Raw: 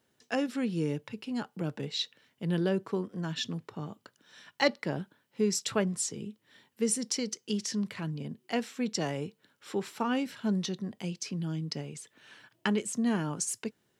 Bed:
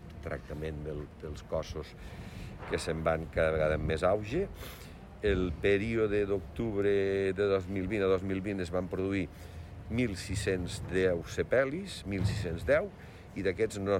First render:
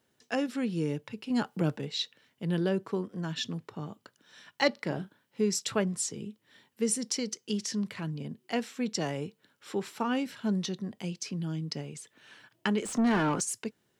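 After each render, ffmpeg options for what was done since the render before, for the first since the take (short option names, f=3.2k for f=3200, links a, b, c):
-filter_complex "[0:a]asettb=1/sr,asplit=3[a][b][c];[a]atrim=end=1.304[d];[b]atrim=start=1.3:end=1.77,asetpts=PTS-STARTPTS,afade=t=in:d=0.004:c=qsin,afade=t=out:st=0.466:d=0.004:c=qsin,acontrast=38[e];[c]atrim=start=1.766[f];[d][e]acrossfade=d=0.004:c1=hsin:c2=qsin[g];[g][f]acrossfade=d=0.004:c1=qsin:c2=hsin,asettb=1/sr,asplit=3[h][i][j];[h]atrim=end=4.734[k];[i]atrim=start=4.73:end=5.41,asetpts=PTS-STARTPTS,afade=t=in:d=0.004:c=qsin,afade=t=out:st=0.676:d=0.004:c=qsin,asplit=2[l][m];[m]adelay=38,volume=-11dB[n];[l][n]amix=inputs=2:normalize=0,atrim=end_sample=29988[o];[j]atrim=start=5.406[p];[k][o]acrossfade=d=0.004:c1=hsin:c2=qsin[q];[q][p]acrossfade=d=0.004:c1=qsin:c2=hsin,asettb=1/sr,asplit=3[r][s][t];[r]atrim=end=12.824[u];[s]atrim=start=12.82:end=13.41,asetpts=PTS-STARTPTS,afade=t=in:d=0.004:c=qsin,afade=t=out:st=0.586:d=0.004:c=qsin,asplit=2[v][w];[w]highpass=f=720:p=1,volume=25dB,asoftclip=type=tanh:threshold=-17.5dB[x];[v][x]amix=inputs=2:normalize=0,lowpass=f=1.5k:p=1,volume=-6dB[y];[t]atrim=start=13.406[z];[u][y]acrossfade=d=0.004:c1=hsin:c2=qsin[aa];[aa][z]acrossfade=d=0.004:c1=qsin:c2=hsin"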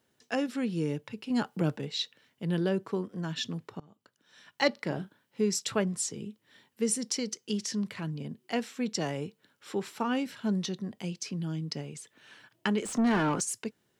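-filter_complex "[0:a]asplit=2[a][b];[a]atrim=end=3.8,asetpts=PTS-STARTPTS,afade=t=out:st=3.796:d=0.004:c=hsin:silence=0.0668344[c];[b]atrim=start=3.8,asetpts=PTS-STARTPTS,afade=t=in:d=0.87:silence=0.0668344[d];[c][d]concat=n=2:v=0:a=1"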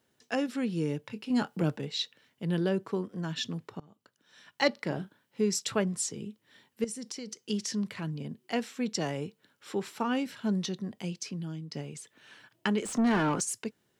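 -filter_complex "[0:a]asettb=1/sr,asplit=3[a][b][c];[a]atrim=end=1.014[d];[b]atrim=start=1.01:end=1.64,asetpts=PTS-STARTPTS,afade=t=in:d=0.004:c=qsin,afade=t=out:st=0.626:d=0.004:c=qsin,asplit=2[e][f];[f]adelay=24,volume=-11dB[g];[e][g]amix=inputs=2:normalize=0,atrim=end_sample=27783[h];[c]atrim=start=1.636[i];[d][h]acrossfade=d=0.004:c1=hsin:c2=qsin[j];[j][i]acrossfade=d=0.004:c1=qsin:c2=hsin,asettb=1/sr,asplit=3[k][l][m];[k]atrim=end=6.844[n];[l]atrim=start=6.84:end=7.42,asetpts=PTS-STARTPTS,afade=t=in:d=0.004:c=qsin,afade=t=out:st=0.576:d=0.004:c=qsin,acompressor=threshold=-36dB:ratio=6:attack=3.2:release=140:knee=1:detection=peak[o];[m]atrim=start=7.416[p];[n][o]acrossfade=d=0.004:c1=hsin:c2=qsin[q];[q][p]acrossfade=d=0.004:c1=qsin:c2=hsin,asplit=2[r][s];[r]atrim=end=11.73,asetpts=PTS-STARTPTS,afade=t=out:st=11.13:d=0.6:silence=0.421697[t];[s]atrim=start=11.73,asetpts=PTS-STARTPTS,afade=t=in:d=0.004:c=hsin:silence=0.421697[u];[t][u]concat=n=2:v=0:a=1"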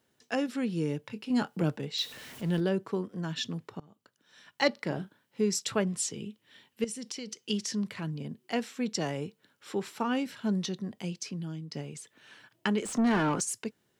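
-filter_complex "[0:a]asettb=1/sr,asplit=3[a][b][c];[a]atrim=end=1.984[d];[b]atrim=start=1.98:end=2.6,asetpts=PTS-STARTPTS,afade=t=in:d=0.004:c=qsin,afade=t=out:st=0.616:d=0.004:c=qsin,aeval=exprs='val(0)+0.5*0.00841*sgn(val(0))':c=same[e];[c]atrim=start=2.596[f];[d][e]acrossfade=d=0.004:c1=hsin:c2=qsin[g];[g][f]acrossfade=d=0.004:c1=qsin:c2=hsin,asettb=1/sr,asplit=3[h][i][j];[h]atrim=end=5.864[k];[i]atrim=start=5.86:end=7.58,asetpts=PTS-STARTPTS,afade=t=in:d=0.004:c=qsin,afade=t=out:st=1.716:d=0.004:c=qsin,equalizer=f=2.9k:t=o:w=0.8:g=6[l];[j]atrim=start=7.576[m];[k][l]acrossfade=d=0.004:c1=hsin:c2=qsin[n];[n][m]acrossfade=d=0.004:c1=qsin:c2=hsin"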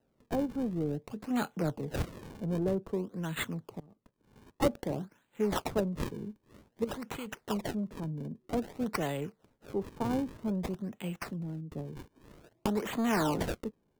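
-filter_complex "[0:a]acrossover=split=340|980[a][b][c];[a]asoftclip=type=tanh:threshold=-30.5dB[d];[c]acrusher=samples=38:mix=1:aa=0.000001:lfo=1:lforange=60.8:lforate=0.52[e];[d][b][e]amix=inputs=3:normalize=0"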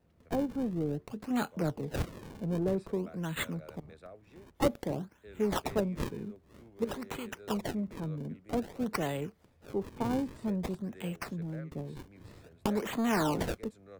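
-filter_complex "[1:a]volume=-22.5dB[a];[0:a][a]amix=inputs=2:normalize=0"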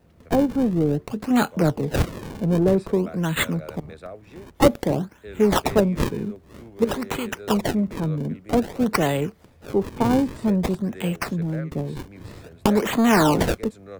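-af "volume=12dB"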